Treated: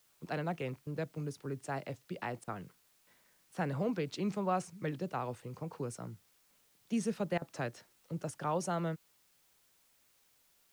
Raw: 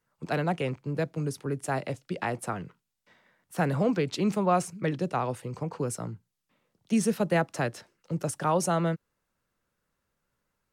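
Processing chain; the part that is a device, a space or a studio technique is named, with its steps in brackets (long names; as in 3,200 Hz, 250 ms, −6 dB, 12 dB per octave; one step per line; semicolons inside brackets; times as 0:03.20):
worn cassette (low-pass filter 8,000 Hz; tape wow and flutter; tape dropouts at 0:00.83/0:02.44/0:02.89/0:07.38, 36 ms −20 dB; white noise bed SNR 31 dB)
level −8.5 dB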